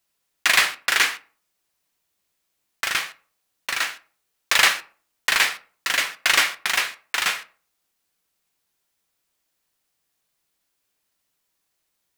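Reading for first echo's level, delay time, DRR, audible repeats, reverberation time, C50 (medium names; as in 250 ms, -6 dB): no echo, no echo, 10.0 dB, no echo, 0.45 s, 18.5 dB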